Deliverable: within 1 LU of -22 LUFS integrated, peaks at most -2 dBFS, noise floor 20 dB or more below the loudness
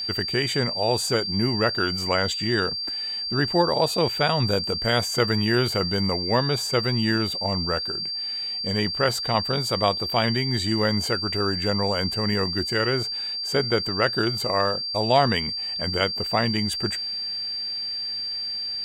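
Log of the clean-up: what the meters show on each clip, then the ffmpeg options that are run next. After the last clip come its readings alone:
steady tone 4.7 kHz; tone level -27 dBFS; loudness -23.5 LUFS; peak level -7.0 dBFS; loudness target -22.0 LUFS
-> -af "bandreject=f=4700:w=30"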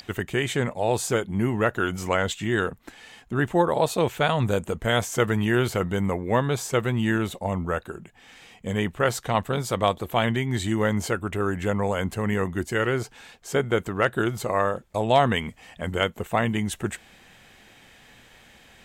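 steady tone not found; loudness -25.0 LUFS; peak level -7.5 dBFS; loudness target -22.0 LUFS
-> -af "volume=1.41"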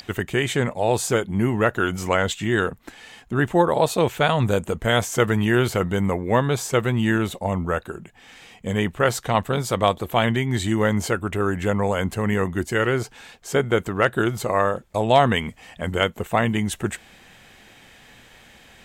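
loudness -22.0 LUFS; peak level -4.5 dBFS; noise floor -50 dBFS

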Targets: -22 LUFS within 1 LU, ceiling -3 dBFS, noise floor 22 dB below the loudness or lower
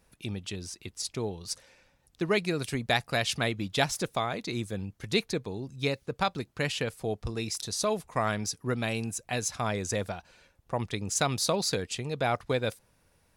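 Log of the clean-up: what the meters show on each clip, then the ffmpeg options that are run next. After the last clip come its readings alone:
loudness -31.0 LUFS; peak level -8.5 dBFS; loudness target -22.0 LUFS
-> -af "volume=2.82,alimiter=limit=0.708:level=0:latency=1"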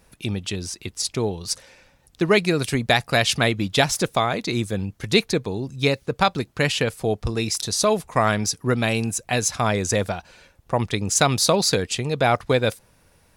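loudness -22.0 LUFS; peak level -3.0 dBFS; noise floor -59 dBFS

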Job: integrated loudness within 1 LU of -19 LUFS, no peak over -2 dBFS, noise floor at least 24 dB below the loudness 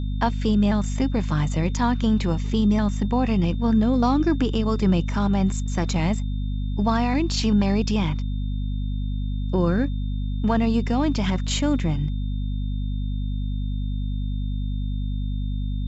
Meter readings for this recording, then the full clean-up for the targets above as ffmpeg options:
hum 50 Hz; highest harmonic 250 Hz; hum level -23 dBFS; steady tone 3.6 kHz; tone level -49 dBFS; loudness -24.0 LUFS; peak level -9.0 dBFS; loudness target -19.0 LUFS
-> -af "bandreject=f=50:t=h:w=6,bandreject=f=100:t=h:w=6,bandreject=f=150:t=h:w=6,bandreject=f=200:t=h:w=6,bandreject=f=250:t=h:w=6"
-af "bandreject=f=3600:w=30"
-af "volume=1.78"

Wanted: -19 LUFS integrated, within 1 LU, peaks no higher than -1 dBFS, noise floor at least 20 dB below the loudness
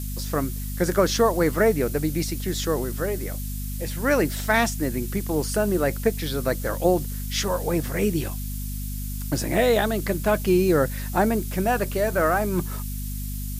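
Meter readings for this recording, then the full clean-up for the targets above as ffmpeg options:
hum 50 Hz; highest harmonic 250 Hz; hum level -28 dBFS; noise floor -30 dBFS; noise floor target -45 dBFS; loudness -24.5 LUFS; peak level -7.0 dBFS; loudness target -19.0 LUFS
-> -af "bandreject=f=50:t=h:w=6,bandreject=f=100:t=h:w=6,bandreject=f=150:t=h:w=6,bandreject=f=200:t=h:w=6,bandreject=f=250:t=h:w=6"
-af "afftdn=nr=15:nf=-30"
-af "volume=1.88"

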